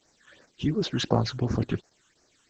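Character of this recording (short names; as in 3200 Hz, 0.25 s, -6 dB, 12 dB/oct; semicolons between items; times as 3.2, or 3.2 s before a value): a quantiser's noise floor 10-bit, dither triangular; phasing stages 8, 2.8 Hz, lowest notch 600–3300 Hz; Opus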